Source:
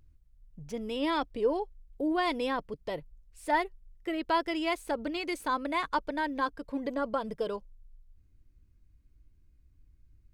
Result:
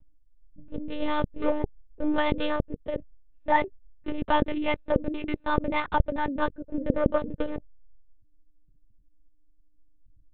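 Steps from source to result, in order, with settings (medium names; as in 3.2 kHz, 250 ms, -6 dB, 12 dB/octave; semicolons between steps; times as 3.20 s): local Wiener filter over 41 samples; dynamic bell 550 Hz, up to +4 dB, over -47 dBFS, Q 3.2; monotone LPC vocoder at 8 kHz 300 Hz; trim +5 dB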